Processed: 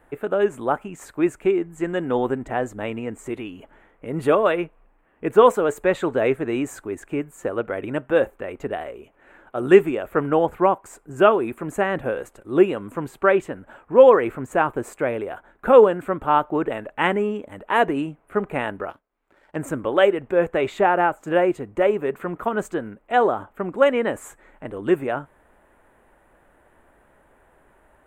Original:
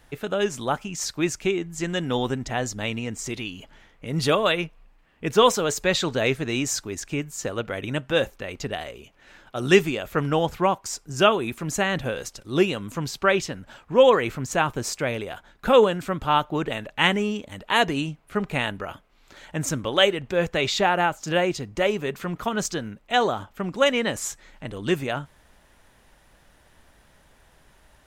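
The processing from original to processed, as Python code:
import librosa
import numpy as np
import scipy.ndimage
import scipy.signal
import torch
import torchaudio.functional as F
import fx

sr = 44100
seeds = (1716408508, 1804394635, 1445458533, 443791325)

y = fx.curve_eq(x, sr, hz=(160.0, 350.0, 1500.0, 2500.0, 5400.0, 8000.0), db=(0, 10, 6, -1, -22, -3))
y = fx.power_curve(y, sr, exponent=1.4, at=(18.9, 19.56))
y = y * librosa.db_to_amplitude(-4.5)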